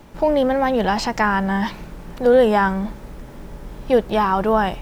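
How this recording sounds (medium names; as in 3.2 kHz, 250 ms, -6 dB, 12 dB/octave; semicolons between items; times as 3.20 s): noise floor -38 dBFS; spectral tilt -4.5 dB/octave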